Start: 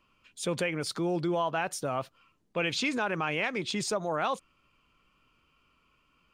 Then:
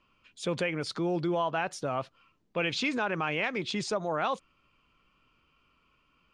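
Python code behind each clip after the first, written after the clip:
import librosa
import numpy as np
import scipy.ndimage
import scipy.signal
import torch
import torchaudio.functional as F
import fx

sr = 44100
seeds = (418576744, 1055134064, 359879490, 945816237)

y = scipy.signal.sosfilt(scipy.signal.butter(2, 5800.0, 'lowpass', fs=sr, output='sos'), x)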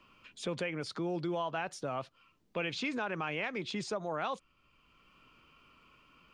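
y = fx.band_squash(x, sr, depth_pct=40)
y = F.gain(torch.from_numpy(y), -5.5).numpy()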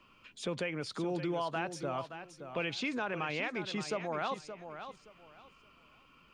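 y = fx.echo_feedback(x, sr, ms=572, feedback_pct=23, wet_db=-10.0)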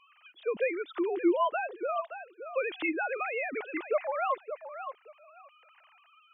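y = fx.sine_speech(x, sr)
y = F.gain(torch.from_numpy(y), 5.0).numpy()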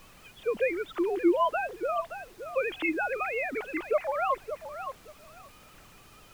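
y = fx.dmg_noise_colour(x, sr, seeds[0], colour='pink', level_db=-57.0)
y = F.gain(torch.from_numpy(y), 2.0).numpy()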